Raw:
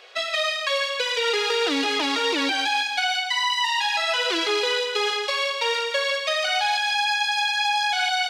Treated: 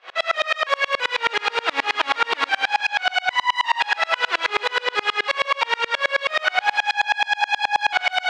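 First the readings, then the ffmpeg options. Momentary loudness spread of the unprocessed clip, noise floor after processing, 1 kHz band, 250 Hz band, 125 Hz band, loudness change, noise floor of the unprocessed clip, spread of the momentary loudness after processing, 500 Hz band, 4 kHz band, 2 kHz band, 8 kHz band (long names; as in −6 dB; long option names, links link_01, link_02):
2 LU, −42 dBFS, +3.5 dB, −11.5 dB, can't be measured, +1.0 dB, −29 dBFS, 2 LU, −2.5 dB, −2.5 dB, +3.5 dB, −6.5 dB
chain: -af "apsyclip=27dB,aeval=exprs='max(val(0),0)':channel_layout=same,highpass=720,lowpass=2100,asoftclip=type=hard:threshold=-5.5dB,aeval=exprs='val(0)*pow(10,-33*if(lt(mod(-9.4*n/s,1),2*abs(-9.4)/1000),1-mod(-9.4*n/s,1)/(2*abs(-9.4)/1000),(mod(-9.4*n/s,1)-2*abs(-9.4)/1000)/(1-2*abs(-9.4)/1000))/20)':channel_layout=same"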